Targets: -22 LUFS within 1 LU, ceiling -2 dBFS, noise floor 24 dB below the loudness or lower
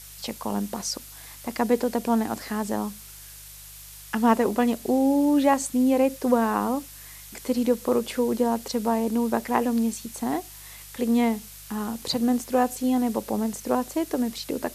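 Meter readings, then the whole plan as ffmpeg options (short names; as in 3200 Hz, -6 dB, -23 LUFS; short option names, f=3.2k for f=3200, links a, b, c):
hum 50 Hz; harmonics up to 150 Hz; hum level -49 dBFS; noise floor -44 dBFS; noise floor target -49 dBFS; loudness -25.0 LUFS; peak -5.5 dBFS; loudness target -22.0 LUFS
-> -af "bandreject=f=50:t=h:w=4,bandreject=f=100:t=h:w=4,bandreject=f=150:t=h:w=4"
-af "afftdn=nr=6:nf=-44"
-af "volume=3dB"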